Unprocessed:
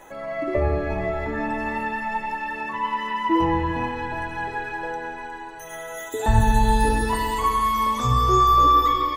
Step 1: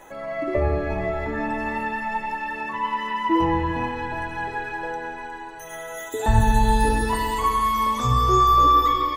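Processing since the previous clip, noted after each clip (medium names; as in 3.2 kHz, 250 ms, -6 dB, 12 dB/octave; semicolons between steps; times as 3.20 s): no audible change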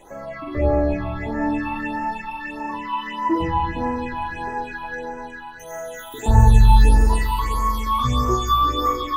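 on a send: flutter echo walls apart 7.6 m, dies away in 0.7 s; on the sum: phase shifter stages 6, 1.6 Hz, lowest notch 470–3600 Hz; trim +1 dB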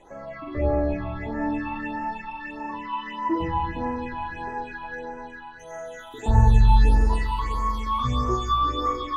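distance through air 70 m; trim -4 dB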